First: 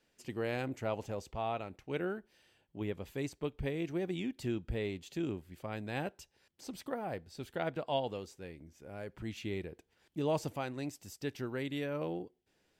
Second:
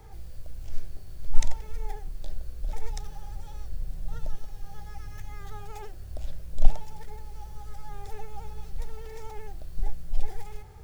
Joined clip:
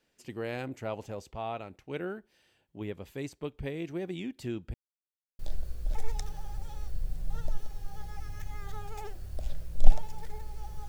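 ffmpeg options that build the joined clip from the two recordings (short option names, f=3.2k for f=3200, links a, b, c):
-filter_complex "[0:a]apad=whole_dur=10.88,atrim=end=10.88,asplit=2[a][b];[a]atrim=end=4.74,asetpts=PTS-STARTPTS,afade=t=out:st=4.736:d=0.004:c=hsin[c];[b]atrim=start=4.74:end=5.39,asetpts=PTS-STARTPTS,volume=0[d];[1:a]atrim=start=2.17:end=7.66,asetpts=PTS-STARTPTS,afade=t=in:d=0.004:c=hsin[e];[c][d][e]concat=n=3:v=0:a=1"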